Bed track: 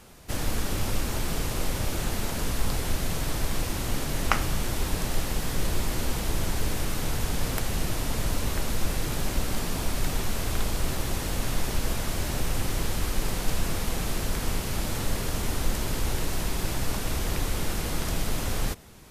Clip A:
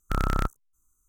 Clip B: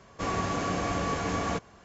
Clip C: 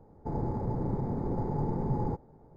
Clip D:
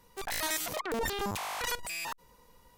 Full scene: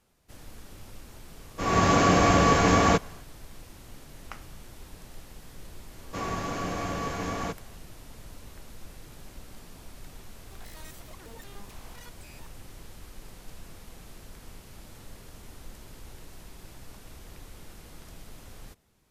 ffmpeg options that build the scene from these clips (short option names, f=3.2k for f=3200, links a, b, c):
-filter_complex "[2:a]asplit=2[a][b];[0:a]volume=-18.5dB[c];[a]dynaudnorm=f=130:g=5:m=16dB,atrim=end=1.84,asetpts=PTS-STARTPTS,volume=-5dB,afade=t=in:d=0.004:c=hsin,afade=t=out:st=1.836:d=0.004:c=hsin,adelay=1390[d];[b]atrim=end=1.84,asetpts=PTS-STARTPTS,volume=-2.5dB,afade=t=in:d=0.004:c=hsin,afade=t=out:st=1.836:d=0.004:c=hsin,adelay=5940[e];[4:a]atrim=end=2.77,asetpts=PTS-STARTPTS,volume=-17.5dB,afade=t=in:d=0.004:c=hsin,afade=t=out:st=2.766:d=0.004:c=hsin,adelay=455994S[f];[c][d][e][f]amix=inputs=4:normalize=0"